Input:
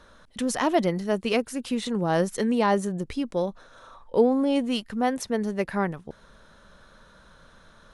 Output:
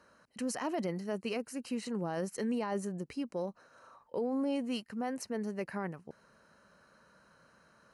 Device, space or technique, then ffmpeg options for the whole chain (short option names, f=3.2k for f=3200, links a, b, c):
PA system with an anti-feedback notch: -af "highpass=120,asuperstop=centerf=3500:order=4:qfactor=4.1,alimiter=limit=-18dB:level=0:latency=1:release=14,volume=-8.5dB"